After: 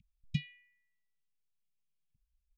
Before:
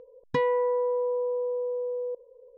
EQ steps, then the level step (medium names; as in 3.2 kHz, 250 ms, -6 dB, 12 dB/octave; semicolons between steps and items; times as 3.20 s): elliptic band-stop 180–2300 Hz; Chebyshev band-stop 220–2300 Hz, order 4; treble shelf 2.7 kHz -10 dB; +5.5 dB